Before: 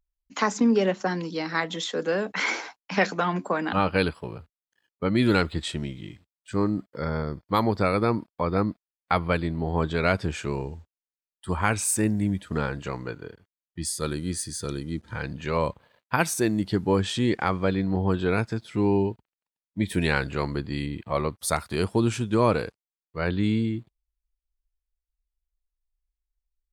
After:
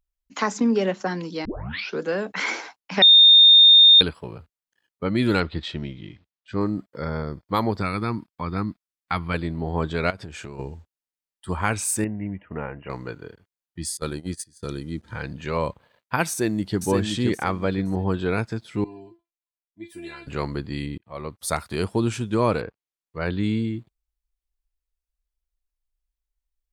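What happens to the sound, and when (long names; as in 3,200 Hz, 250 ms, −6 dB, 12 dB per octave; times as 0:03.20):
0:01.45: tape start 0.56 s
0:03.02–0:04.01: beep over 3,650 Hz −8 dBFS
0:05.40–0:06.61: low-pass filter 5,100 Hz 24 dB per octave
0:07.81–0:09.34: parametric band 540 Hz −12 dB 0.93 octaves
0:10.10–0:10.59: downward compressor 16 to 1, threshold −32 dBFS
0:12.04–0:12.90: Chebyshev low-pass with heavy ripple 2,900 Hz, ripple 6 dB
0:13.97–0:14.63: noise gate −31 dBFS, range −22 dB
0:16.29–0:16.80: delay throw 520 ms, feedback 25%, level −4.5 dB
0:18.84–0:20.27: tuned comb filter 340 Hz, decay 0.2 s, mix 100%
0:20.98–0:21.52: fade in
0:22.60–0:23.21: treble cut that deepens with the level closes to 1,900 Hz, closed at −31.5 dBFS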